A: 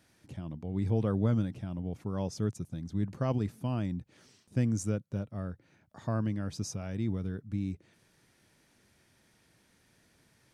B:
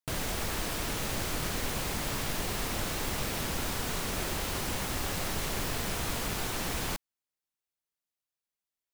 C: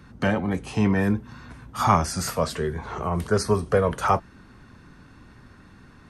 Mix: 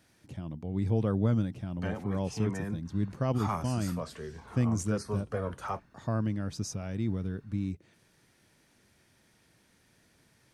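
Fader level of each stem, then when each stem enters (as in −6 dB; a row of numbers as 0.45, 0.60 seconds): +1.0 dB, muted, −14.5 dB; 0.00 s, muted, 1.60 s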